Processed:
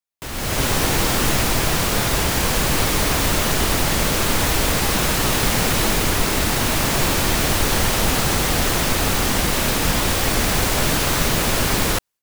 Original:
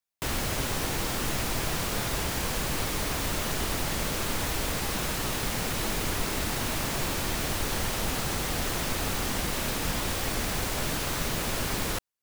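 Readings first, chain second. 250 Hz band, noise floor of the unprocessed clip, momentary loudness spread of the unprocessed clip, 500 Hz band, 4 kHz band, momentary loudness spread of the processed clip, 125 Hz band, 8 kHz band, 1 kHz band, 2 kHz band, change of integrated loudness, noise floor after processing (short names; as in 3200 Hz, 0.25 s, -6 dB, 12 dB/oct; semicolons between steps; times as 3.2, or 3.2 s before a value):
+10.5 dB, -31 dBFS, 0 LU, +10.5 dB, +10.5 dB, 1 LU, +10.5 dB, +10.5 dB, +10.5 dB, +10.5 dB, +10.5 dB, -25 dBFS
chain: AGC gain up to 15.5 dB; gain -3 dB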